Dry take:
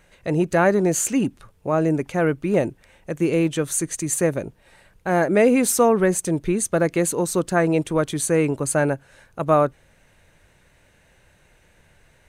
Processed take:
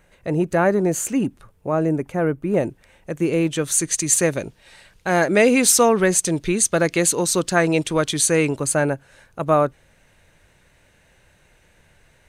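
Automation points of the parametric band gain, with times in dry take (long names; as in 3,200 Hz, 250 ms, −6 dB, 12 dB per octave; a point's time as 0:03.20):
parametric band 4,500 Hz 2.3 octaves
0:01.74 −4 dB
0:02.43 −12 dB
0:02.66 0 dB
0:03.35 0 dB
0:03.94 +11 dB
0:08.40 +11 dB
0:08.89 +1.5 dB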